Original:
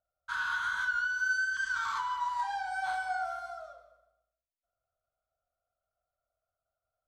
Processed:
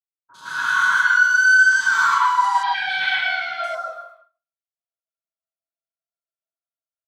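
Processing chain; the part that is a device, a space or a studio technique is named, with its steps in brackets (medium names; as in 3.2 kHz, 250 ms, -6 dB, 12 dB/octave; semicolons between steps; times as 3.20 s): far laptop microphone (reverberation RT60 0.30 s, pre-delay 103 ms, DRR -3 dB; high-pass 150 Hz 24 dB/octave; level rider gain up to 13 dB); 2.58–3.59 s: FFT filter 330 Hz 0 dB, 1.2 kHz -13 dB, 2 kHz +14 dB, 3.5 kHz +14 dB, 7.5 kHz -23 dB; expander -38 dBFS; three bands offset in time lows, highs, mids 50/160 ms, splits 760/3500 Hz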